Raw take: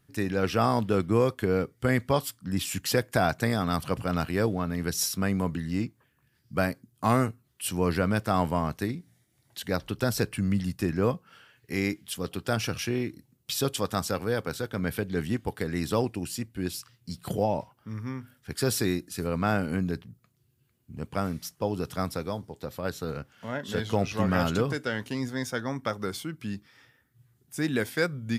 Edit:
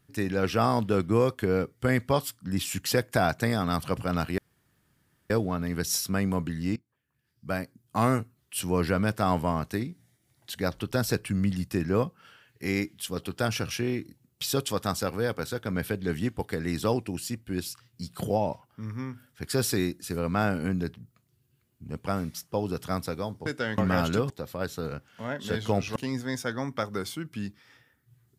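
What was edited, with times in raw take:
4.38 s: insert room tone 0.92 s
5.84–7.25 s: fade in, from -20.5 dB
22.54–24.20 s: swap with 24.72–25.04 s

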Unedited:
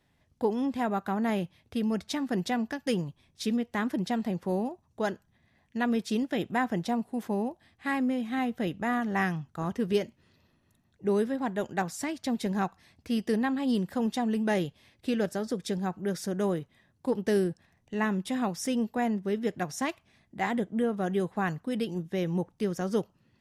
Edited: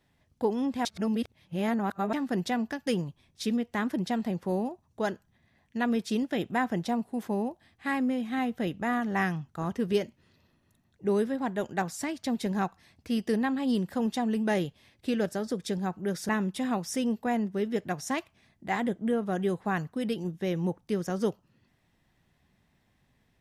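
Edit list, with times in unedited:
0.85–2.13 s: reverse
16.29–18.00 s: delete

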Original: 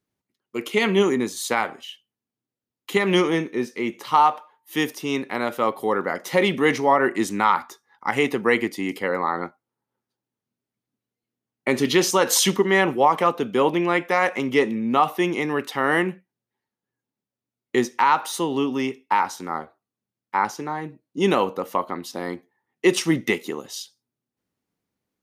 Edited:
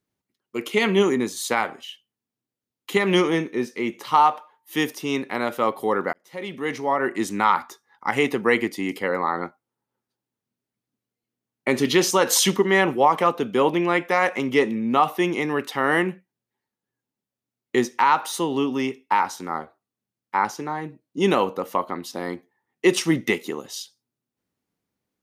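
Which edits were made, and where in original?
6.13–7.49 s: fade in

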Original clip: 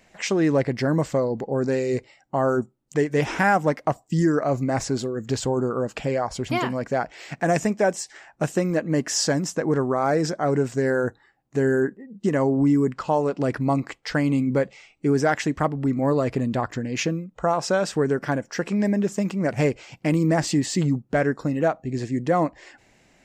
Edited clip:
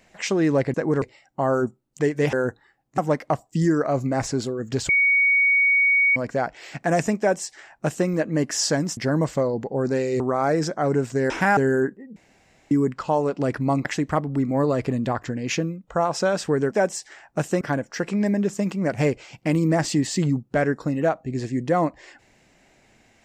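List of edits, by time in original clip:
0.74–1.97 s: swap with 9.54–9.82 s
3.28–3.55 s: swap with 10.92–11.57 s
5.46–6.73 s: bleep 2.24 kHz -15 dBFS
7.76–8.65 s: copy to 18.20 s
12.16–12.71 s: room tone
13.85–15.33 s: delete

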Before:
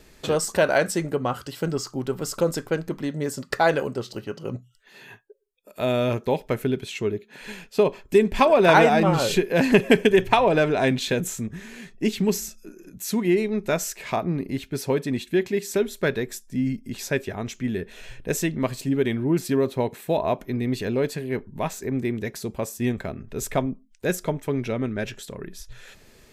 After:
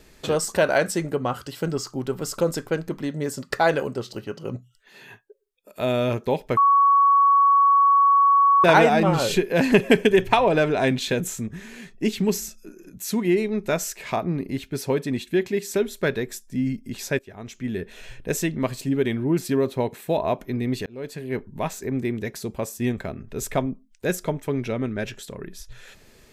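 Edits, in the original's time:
6.57–8.64 s: bleep 1.12 kHz -13 dBFS
17.19–17.82 s: fade in linear, from -19 dB
20.86–21.36 s: fade in

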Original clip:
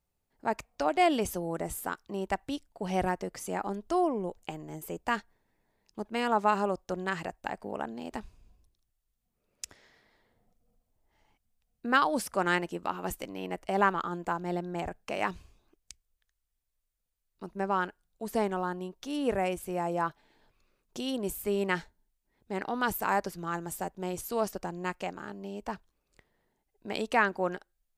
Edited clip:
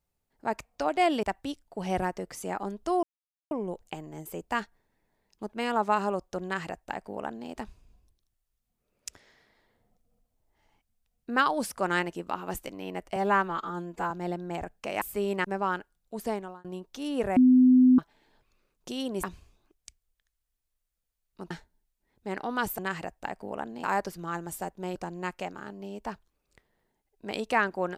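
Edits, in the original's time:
1.23–2.27 s: delete
4.07 s: insert silence 0.48 s
7.00–8.05 s: copy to 23.03 s
13.72–14.35 s: stretch 1.5×
15.26–17.53 s: swap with 21.32–21.75 s
18.28–18.73 s: fade out
19.45–20.07 s: bleep 254 Hz -14.5 dBFS
24.15–24.57 s: delete

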